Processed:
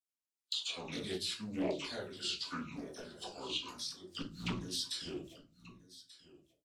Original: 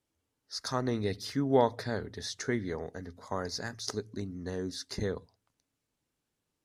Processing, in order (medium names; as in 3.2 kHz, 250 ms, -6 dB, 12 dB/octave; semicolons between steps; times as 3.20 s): sawtooth pitch modulation -9 st, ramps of 921 ms; gate -53 dBFS, range -36 dB; tilt EQ +4.5 dB/octave; level rider gain up to 11.5 dB; peak limiter -13 dBFS, peak gain reduction 11.5 dB; LFO notch saw down 3.8 Hz 570–1700 Hz; inverted gate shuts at -32 dBFS, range -25 dB; phase dispersion lows, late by 49 ms, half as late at 1.1 kHz; on a send: delay 1186 ms -18 dB; on the sum: simulated room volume 130 m³, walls furnished, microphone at 1.8 m; loudspeaker Doppler distortion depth 0.36 ms; trim +8.5 dB